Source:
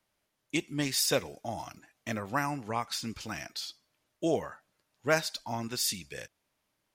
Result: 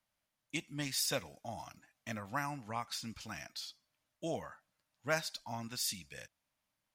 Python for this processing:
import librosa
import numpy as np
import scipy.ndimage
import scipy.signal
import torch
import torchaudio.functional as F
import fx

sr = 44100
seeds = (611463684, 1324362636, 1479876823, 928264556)

y = fx.peak_eq(x, sr, hz=390.0, db=-12.0, octaves=0.49)
y = F.gain(torch.from_numpy(y), -6.0).numpy()